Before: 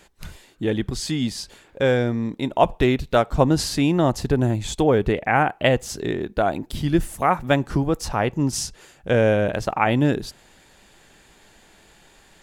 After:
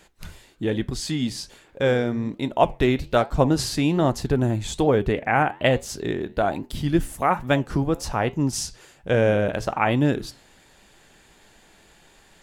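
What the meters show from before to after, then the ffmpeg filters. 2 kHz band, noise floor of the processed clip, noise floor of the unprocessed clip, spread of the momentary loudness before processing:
−1.5 dB, −55 dBFS, −54 dBFS, 8 LU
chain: -af "flanger=delay=6.2:depth=6.7:regen=-82:speed=1.2:shape=sinusoidal,volume=3dB"

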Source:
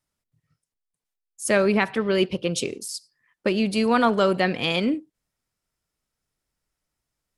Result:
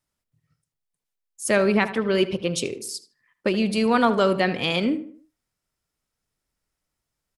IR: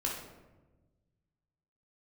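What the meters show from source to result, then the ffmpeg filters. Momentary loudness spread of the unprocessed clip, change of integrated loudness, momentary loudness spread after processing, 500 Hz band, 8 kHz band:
12 LU, +0.5 dB, 11 LU, +0.5 dB, 0.0 dB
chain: -filter_complex "[0:a]asplit=2[link_01][link_02];[link_02]adelay=77,lowpass=frequency=2200:poles=1,volume=-12.5dB,asplit=2[link_03][link_04];[link_04]adelay=77,lowpass=frequency=2200:poles=1,volume=0.41,asplit=2[link_05][link_06];[link_06]adelay=77,lowpass=frequency=2200:poles=1,volume=0.41,asplit=2[link_07][link_08];[link_08]adelay=77,lowpass=frequency=2200:poles=1,volume=0.41[link_09];[link_01][link_03][link_05][link_07][link_09]amix=inputs=5:normalize=0"

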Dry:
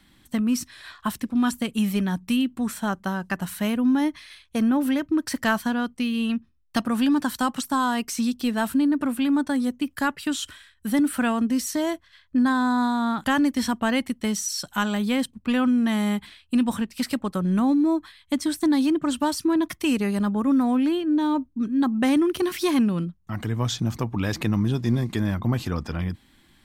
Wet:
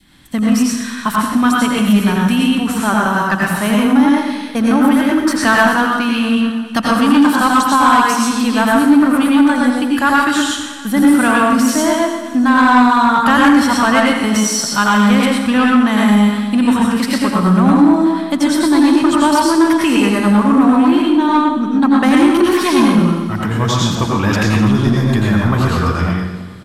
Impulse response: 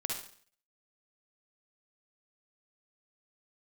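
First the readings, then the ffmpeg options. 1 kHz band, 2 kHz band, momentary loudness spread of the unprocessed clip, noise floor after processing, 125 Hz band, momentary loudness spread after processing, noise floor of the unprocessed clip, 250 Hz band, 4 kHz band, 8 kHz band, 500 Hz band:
+15.5 dB, +14.5 dB, 8 LU, −24 dBFS, +10.5 dB, 6 LU, −60 dBFS, +10.5 dB, +11.5 dB, +11.0 dB, +11.5 dB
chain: -filter_complex "[0:a]aecho=1:1:324|648|972|1296:0.126|0.0629|0.0315|0.0157[link_01];[1:a]atrim=start_sample=2205,asetrate=25137,aresample=44100[link_02];[link_01][link_02]afir=irnorm=-1:irlink=0,adynamicequalizer=threshold=0.0178:dfrequency=1200:dqfactor=1.1:tfrequency=1200:tqfactor=1.1:attack=5:release=100:ratio=0.375:range=3.5:mode=boostabove:tftype=bell,acontrast=61,volume=-1.5dB"

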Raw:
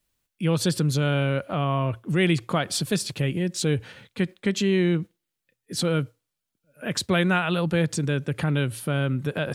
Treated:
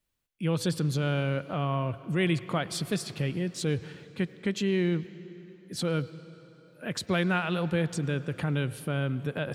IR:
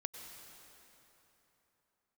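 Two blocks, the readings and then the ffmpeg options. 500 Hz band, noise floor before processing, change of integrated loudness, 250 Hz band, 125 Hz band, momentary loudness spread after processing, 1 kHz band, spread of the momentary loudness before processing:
−5.0 dB, −83 dBFS, −5.0 dB, −5.0 dB, −4.5 dB, 10 LU, −5.0 dB, 7 LU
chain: -filter_complex "[0:a]asplit=2[link_01][link_02];[1:a]atrim=start_sample=2205,lowpass=4600[link_03];[link_02][link_03]afir=irnorm=-1:irlink=0,volume=-6dB[link_04];[link_01][link_04]amix=inputs=2:normalize=0,volume=-7.5dB"

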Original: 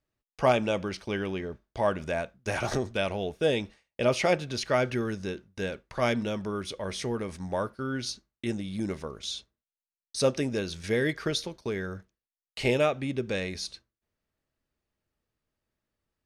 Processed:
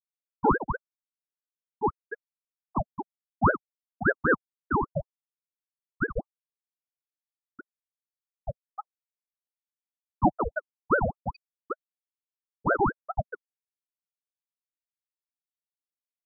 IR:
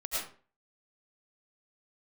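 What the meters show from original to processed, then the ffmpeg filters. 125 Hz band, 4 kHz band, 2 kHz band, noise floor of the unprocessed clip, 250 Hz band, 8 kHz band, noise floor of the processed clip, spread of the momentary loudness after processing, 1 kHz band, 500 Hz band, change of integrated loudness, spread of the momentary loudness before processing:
−2.0 dB, below −35 dB, +2.0 dB, below −85 dBFS, −2.0 dB, below −40 dB, below −85 dBFS, 17 LU, +5.0 dB, −5.5 dB, +1.0 dB, 10 LU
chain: -af "afftfilt=real='re*gte(hypot(re,im),0.398)':imag='im*gte(hypot(re,im),0.398)':win_size=1024:overlap=0.75,highpass=140,equalizer=frequency=150:width_type=q:width=4:gain=5,equalizer=frequency=280:width_type=q:width=4:gain=4,equalizer=frequency=430:width_type=q:width=4:gain=6,equalizer=frequency=940:width_type=q:width=4:gain=-8,equalizer=frequency=1400:width_type=q:width=4:gain=9,lowpass=frequency=2600:width=0.5412,lowpass=frequency=2600:width=1.3066,aeval=exprs='val(0)*sin(2*PI*630*n/s+630*0.7/5.1*sin(2*PI*5.1*n/s))':channel_layout=same,volume=5dB"

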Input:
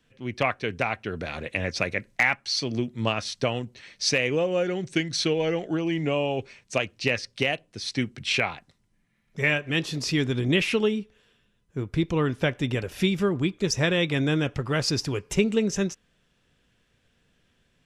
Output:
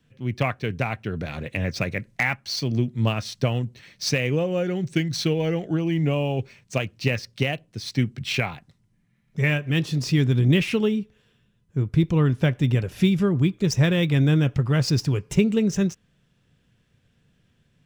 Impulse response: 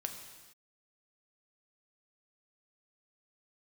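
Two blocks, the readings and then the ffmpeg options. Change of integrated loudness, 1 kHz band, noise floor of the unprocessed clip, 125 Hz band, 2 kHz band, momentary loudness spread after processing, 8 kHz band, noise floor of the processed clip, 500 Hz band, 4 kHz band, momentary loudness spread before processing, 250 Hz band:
+2.5 dB, −1.5 dB, −69 dBFS, +8.5 dB, −2.0 dB, 9 LU, −2.0 dB, −66 dBFS, −0.5 dB, −2.0 dB, 8 LU, +4.0 dB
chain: -filter_complex "[0:a]equalizer=frequency=130:width_type=o:width=1.6:gain=11.5,acrossover=split=3000[link_01][link_02];[link_02]acrusher=bits=3:mode=log:mix=0:aa=0.000001[link_03];[link_01][link_03]amix=inputs=2:normalize=0,volume=-2dB"

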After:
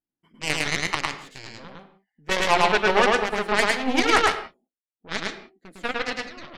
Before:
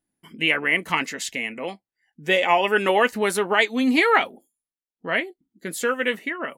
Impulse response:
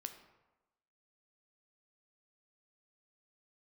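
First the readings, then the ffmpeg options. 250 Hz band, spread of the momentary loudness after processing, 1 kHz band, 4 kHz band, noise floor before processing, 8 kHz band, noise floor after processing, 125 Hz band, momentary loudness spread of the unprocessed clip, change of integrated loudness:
−4.0 dB, 22 LU, +0.5 dB, +1.0 dB, below −85 dBFS, +1.0 dB, below −85 dBFS, +2.0 dB, 15 LU, −1.5 dB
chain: -filter_complex "[0:a]aemphasis=mode=reproduction:type=75fm,aeval=exprs='0.531*(cos(1*acos(clip(val(0)/0.531,-1,1)))-cos(1*PI/2))+0.0422*(cos(3*acos(clip(val(0)/0.531,-1,1)))-cos(3*PI/2))+0.0376*(cos(6*acos(clip(val(0)/0.531,-1,1)))-cos(6*PI/2))+0.075*(cos(7*acos(clip(val(0)/0.531,-1,1)))-cos(7*PI/2))':channel_layout=same,asplit=2[link_01][link_02];[1:a]atrim=start_sample=2205,afade=type=out:start_time=0.24:duration=0.01,atrim=end_sample=11025,adelay=106[link_03];[link_02][link_03]afir=irnorm=-1:irlink=0,volume=3dB[link_04];[link_01][link_04]amix=inputs=2:normalize=0"

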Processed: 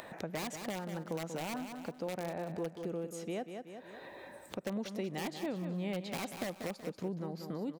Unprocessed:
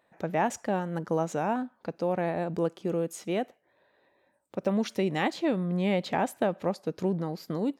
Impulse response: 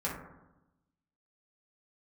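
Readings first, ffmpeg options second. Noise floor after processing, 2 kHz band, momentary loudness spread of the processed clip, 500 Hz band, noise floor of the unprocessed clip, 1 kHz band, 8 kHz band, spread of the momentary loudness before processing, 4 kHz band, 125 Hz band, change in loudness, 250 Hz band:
−55 dBFS, −8.0 dB, 8 LU, −10.0 dB, −70 dBFS, −12.0 dB, −3.5 dB, 5 LU, −4.5 dB, −9.0 dB, −10.0 dB, −9.0 dB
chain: -filter_complex "[0:a]acrossover=split=580|1700[link_01][link_02][link_03];[link_02]aeval=exprs='(mod(21.1*val(0)+1,2)-1)/21.1':channel_layout=same[link_04];[link_01][link_04][link_03]amix=inputs=3:normalize=0,acompressor=mode=upward:threshold=-37dB:ratio=2.5,aecho=1:1:187|374|561|748:0.316|0.114|0.041|0.0148,acompressor=threshold=-50dB:ratio=2,volume=3.5dB"

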